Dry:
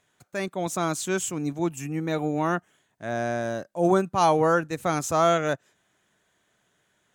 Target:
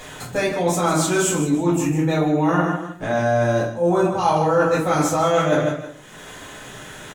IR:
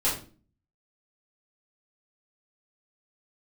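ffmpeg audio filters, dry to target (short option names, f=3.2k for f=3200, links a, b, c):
-filter_complex "[0:a]acompressor=mode=upward:threshold=-30dB:ratio=2.5,aecho=1:1:154|319:0.316|0.106[a];[1:a]atrim=start_sample=2205[b];[a][b]afir=irnorm=-1:irlink=0,areverse,acompressor=threshold=-15dB:ratio=6,areverse"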